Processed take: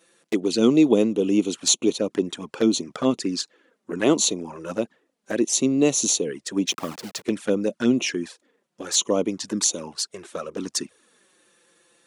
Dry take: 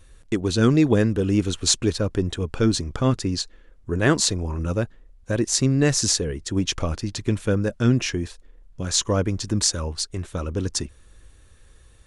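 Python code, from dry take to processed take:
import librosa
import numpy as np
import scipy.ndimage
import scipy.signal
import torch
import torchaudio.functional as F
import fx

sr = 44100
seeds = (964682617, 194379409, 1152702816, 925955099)

y = fx.delta_hold(x, sr, step_db=-34.0, at=(6.67, 7.23), fade=0.02)
y = scipy.signal.sosfilt(scipy.signal.butter(4, 220.0, 'highpass', fs=sr, output='sos'), y)
y = fx.env_flanger(y, sr, rest_ms=6.1, full_db=-20.5)
y = y * 10.0 ** (3.0 / 20.0)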